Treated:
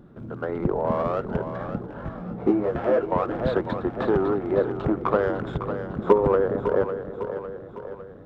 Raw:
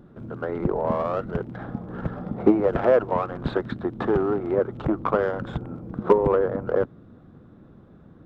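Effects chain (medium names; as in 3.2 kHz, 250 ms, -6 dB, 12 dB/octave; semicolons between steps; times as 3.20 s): two-band feedback delay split 370 Hz, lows 408 ms, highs 554 ms, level -9 dB; 1.87–3.12 s: detune thickener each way 11 cents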